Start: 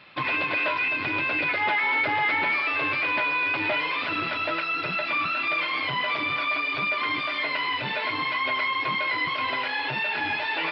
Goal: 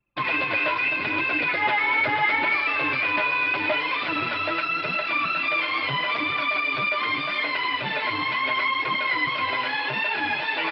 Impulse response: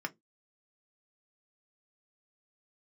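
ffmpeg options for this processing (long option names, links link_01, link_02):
-filter_complex "[0:a]asplit=2[link_01][link_02];[link_02]adelay=466.5,volume=-13dB,highshelf=frequency=4000:gain=-10.5[link_03];[link_01][link_03]amix=inputs=2:normalize=0,flanger=delay=2.1:depth=8.1:regen=44:speed=0.79:shape=triangular,anlmdn=1,volume=5.5dB"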